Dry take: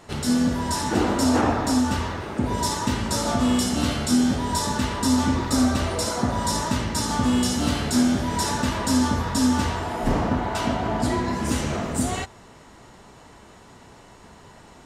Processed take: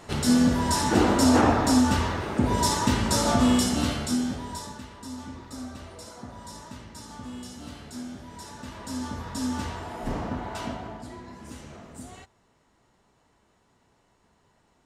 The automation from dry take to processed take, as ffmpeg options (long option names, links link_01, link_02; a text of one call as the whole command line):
ffmpeg -i in.wav -af "volume=10.5dB,afade=type=out:start_time=3.41:duration=0.81:silence=0.375837,afade=type=out:start_time=4.22:duration=0.62:silence=0.298538,afade=type=in:start_time=8.53:duration=1.05:silence=0.334965,afade=type=out:start_time=10.64:duration=0.4:silence=0.334965" out.wav